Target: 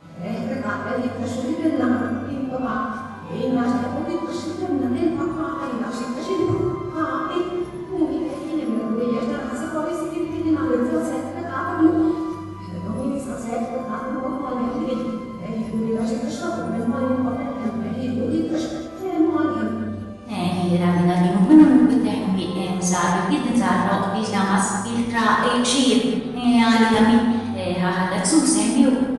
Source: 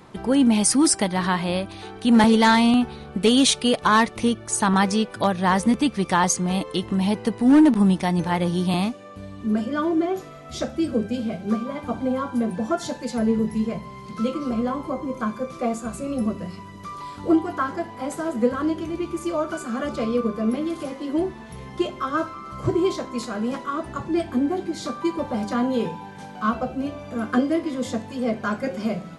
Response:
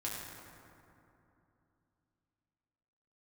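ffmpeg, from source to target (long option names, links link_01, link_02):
-filter_complex "[0:a]areverse,asplit=2[link_01][link_02];[link_02]adelay=210,lowpass=frequency=1600:poles=1,volume=-7dB,asplit=2[link_03][link_04];[link_04]adelay=210,lowpass=frequency=1600:poles=1,volume=0.37,asplit=2[link_05][link_06];[link_06]adelay=210,lowpass=frequency=1600:poles=1,volume=0.37,asplit=2[link_07][link_08];[link_08]adelay=210,lowpass=frequency=1600:poles=1,volume=0.37[link_09];[link_01][link_03][link_05][link_07][link_09]amix=inputs=5:normalize=0[link_10];[1:a]atrim=start_sample=2205,afade=type=out:start_time=0.31:duration=0.01,atrim=end_sample=14112[link_11];[link_10][link_11]afir=irnorm=-1:irlink=0,volume=-1dB"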